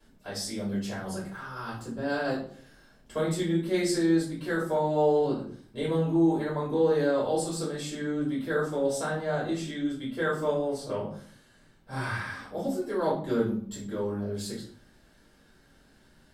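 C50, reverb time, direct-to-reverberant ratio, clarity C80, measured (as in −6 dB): 5.5 dB, 0.55 s, −9.0 dB, 10.5 dB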